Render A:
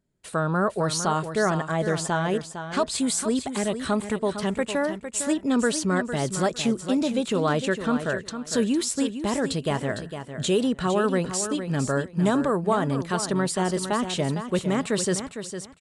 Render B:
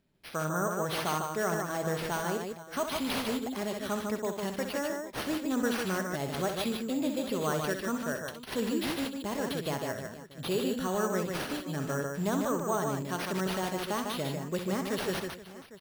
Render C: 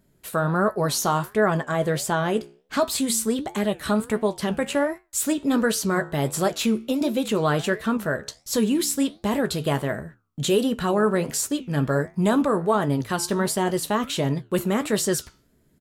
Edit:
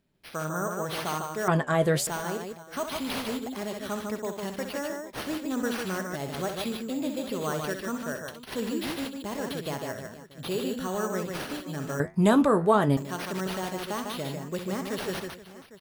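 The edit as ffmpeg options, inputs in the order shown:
-filter_complex "[2:a]asplit=2[a][b];[1:a]asplit=3[c][d][e];[c]atrim=end=1.482[f];[a]atrim=start=1.478:end=2.072[g];[d]atrim=start=2.068:end=12.002[h];[b]atrim=start=11.998:end=12.972[i];[e]atrim=start=12.968[j];[f][g]acrossfade=d=0.004:c1=hsin:c2=hsin[k];[k][h]acrossfade=d=0.004:c1=hsin:c2=hsin[l];[l][i]acrossfade=d=0.004:c1=hsin:c2=hsin[m];[m][j]acrossfade=d=0.004:c1=hsin:c2=hsin"

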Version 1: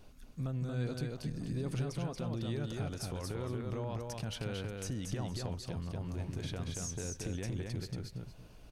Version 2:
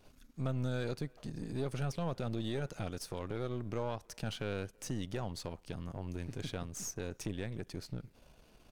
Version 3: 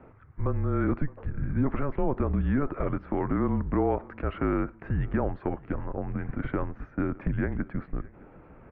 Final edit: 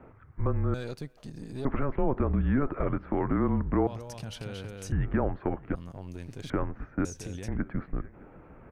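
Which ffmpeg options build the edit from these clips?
-filter_complex "[1:a]asplit=2[a][b];[0:a]asplit=2[c][d];[2:a]asplit=5[e][f][g][h][i];[e]atrim=end=0.742[j];[a]atrim=start=0.738:end=1.652[k];[f]atrim=start=1.648:end=3.872[l];[c]atrim=start=3.868:end=4.922[m];[g]atrim=start=4.918:end=5.752[n];[b]atrim=start=5.748:end=6.502[o];[h]atrim=start=6.498:end=7.052[p];[d]atrim=start=7.048:end=7.482[q];[i]atrim=start=7.478[r];[j][k]acrossfade=d=0.004:c1=hsin:c2=hsin[s];[s][l]acrossfade=d=0.004:c1=hsin:c2=hsin[t];[t][m]acrossfade=d=0.004:c1=hsin:c2=hsin[u];[u][n]acrossfade=d=0.004:c1=hsin:c2=hsin[v];[v][o]acrossfade=d=0.004:c1=hsin:c2=hsin[w];[w][p]acrossfade=d=0.004:c1=hsin:c2=hsin[x];[x][q]acrossfade=d=0.004:c1=hsin:c2=hsin[y];[y][r]acrossfade=d=0.004:c1=hsin:c2=hsin"

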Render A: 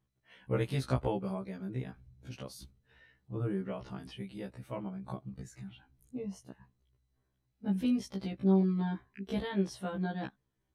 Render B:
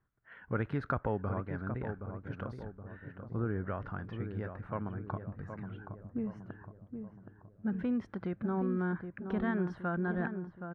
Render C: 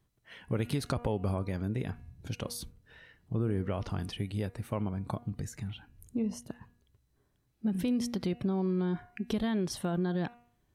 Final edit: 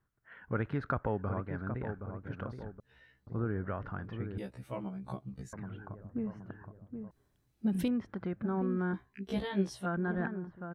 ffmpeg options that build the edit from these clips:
-filter_complex "[0:a]asplit=3[a][b][c];[1:a]asplit=5[d][e][f][g][h];[d]atrim=end=2.802[i];[a]atrim=start=2.798:end=3.272[j];[e]atrim=start=3.268:end=4.382[k];[b]atrim=start=4.378:end=5.532[l];[f]atrim=start=5.528:end=7.112[m];[2:a]atrim=start=7.108:end=7.882[n];[g]atrim=start=7.878:end=8.942[o];[c]atrim=start=8.938:end=9.862[p];[h]atrim=start=9.858[q];[i][j]acrossfade=d=0.004:c1=hsin:c2=hsin[r];[r][k]acrossfade=d=0.004:c1=hsin:c2=hsin[s];[s][l]acrossfade=d=0.004:c1=hsin:c2=hsin[t];[t][m]acrossfade=d=0.004:c1=hsin:c2=hsin[u];[u][n]acrossfade=d=0.004:c1=hsin:c2=hsin[v];[v][o]acrossfade=d=0.004:c1=hsin:c2=hsin[w];[w][p]acrossfade=d=0.004:c1=hsin:c2=hsin[x];[x][q]acrossfade=d=0.004:c1=hsin:c2=hsin"

